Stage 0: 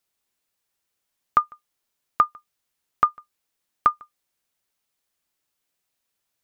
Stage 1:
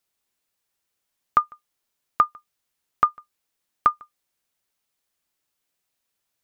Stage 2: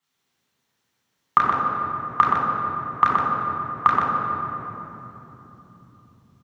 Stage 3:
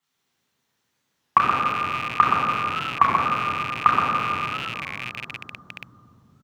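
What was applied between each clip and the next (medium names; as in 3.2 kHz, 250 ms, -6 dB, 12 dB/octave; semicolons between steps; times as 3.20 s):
no audible change
compression, threshold -18 dBFS, peak gain reduction 6 dB; delay 124 ms -5.5 dB; reverberation RT60 3.5 s, pre-delay 3 ms, DRR -5.5 dB; trim -6.5 dB
rattle on loud lows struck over -45 dBFS, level -18 dBFS; warped record 33 1/3 rpm, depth 160 cents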